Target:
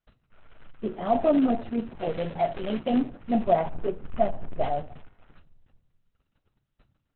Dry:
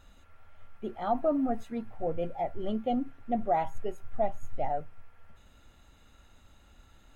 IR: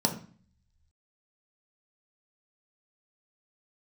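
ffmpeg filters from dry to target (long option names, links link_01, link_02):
-filter_complex "[0:a]acrusher=bits=4:mode=log:mix=0:aa=0.000001,asplit=3[link_01][link_02][link_03];[link_01]afade=type=out:start_time=1.99:duration=0.02[link_04];[link_02]tiltshelf=frequency=630:gain=-5,afade=type=in:start_time=1.99:duration=0.02,afade=type=out:start_time=2.89:duration=0.02[link_05];[link_03]afade=type=in:start_time=2.89:duration=0.02[link_06];[link_04][link_05][link_06]amix=inputs=3:normalize=0,asplit=3[link_07][link_08][link_09];[link_07]afade=type=out:start_time=3.62:duration=0.02[link_10];[link_08]adynamicsmooth=sensitivity=2:basefreq=2600,afade=type=in:start_time=3.62:duration=0.02,afade=type=out:start_time=4.6:duration=0.02[link_11];[link_09]afade=type=in:start_time=4.6:duration=0.02[link_12];[link_10][link_11][link_12]amix=inputs=3:normalize=0,agate=range=-36dB:threshold=-51dB:ratio=16:detection=peak,asplit=2[link_13][link_14];[1:a]atrim=start_sample=2205,asetrate=33516,aresample=44100[link_15];[link_14][link_15]afir=irnorm=-1:irlink=0,volume=-18dB[link_16];[link_13][link_16]amix=inputs=2:normalize=0,volume=3dB" -ar 48000 -c:a libopus -b:a 6k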